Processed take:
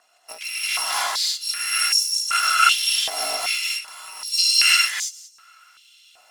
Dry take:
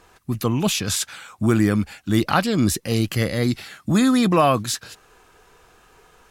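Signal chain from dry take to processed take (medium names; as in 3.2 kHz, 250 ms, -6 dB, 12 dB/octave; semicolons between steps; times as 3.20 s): bit-reversed sample order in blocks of 256 samples; 3.45–4.27 s: compression 8:1, threshold -28 dBFS, peak gain reduction 14 dB; distance through air 64 m; gated-style reverb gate 360 ms rising, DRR -8 dB; step-sequenced high-pass 2.6 Hz 700–6000 Hz; trim -4 dB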